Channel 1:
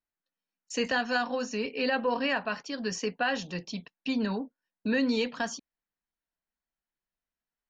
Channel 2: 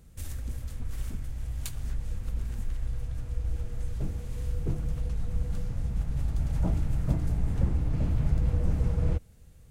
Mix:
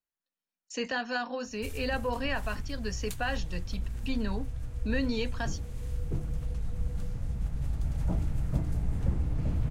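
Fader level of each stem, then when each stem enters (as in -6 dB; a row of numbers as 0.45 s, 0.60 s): -4.0 dB, -2.5 dB; 0.00 s, 1.45 s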